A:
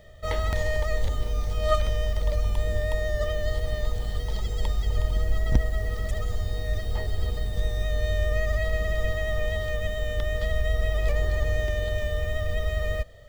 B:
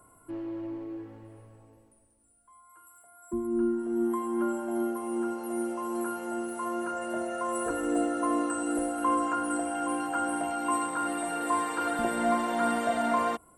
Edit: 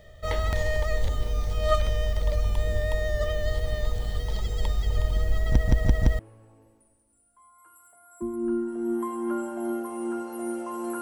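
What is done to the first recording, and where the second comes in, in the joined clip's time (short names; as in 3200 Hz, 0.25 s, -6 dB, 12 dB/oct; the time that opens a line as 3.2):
A
5.51 stutter in place 0.17 s, 4 plays
6.19 switch to B from 1.3 s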